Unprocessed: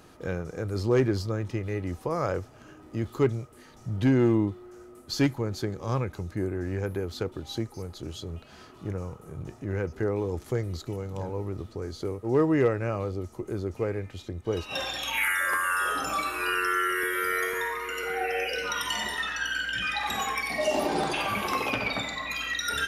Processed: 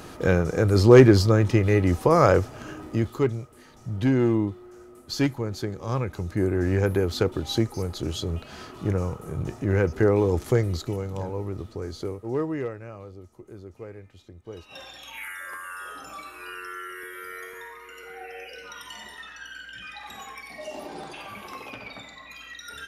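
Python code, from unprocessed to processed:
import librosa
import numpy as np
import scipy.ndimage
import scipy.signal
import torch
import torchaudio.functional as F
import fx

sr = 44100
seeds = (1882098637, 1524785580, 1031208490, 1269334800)

y = fx.gain(x, sr, db=fx.line((2.81, 11.0), (3.21, 0.5), (5.9, 0.5), (6.64, 8.0), (10.47, 8.0), (11.33, 1.5), (11.99, 1.5), (12.86, -11.0)))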